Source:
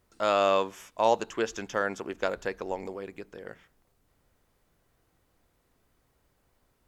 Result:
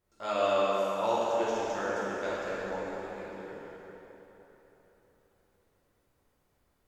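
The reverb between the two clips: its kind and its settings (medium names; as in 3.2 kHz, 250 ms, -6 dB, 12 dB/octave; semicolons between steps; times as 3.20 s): plate-style reverb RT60 3.9 s, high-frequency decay 0.75×, DRR -9 dB; trim -12 dB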